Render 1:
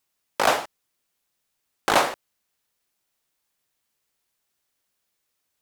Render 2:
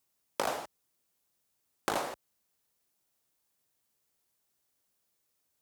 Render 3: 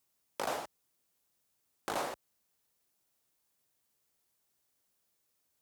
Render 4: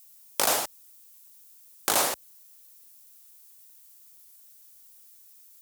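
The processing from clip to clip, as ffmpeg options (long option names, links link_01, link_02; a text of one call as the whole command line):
ffmpeg -i in.wav -af "highpass=41,equalizer=frequency=2300:width_type=o:width=2.5:gain=-6,acompressor=threshold=-28dB:ratio=12" out.wav
ffmpeg -i in.wav -af "alimiter=limit=-22dB:level=0:latency=1:release=42" out.wav
ffmpeg -i in.wav -af "crystalizer=i=4.5:c=0,volume=6.5dB" out.wav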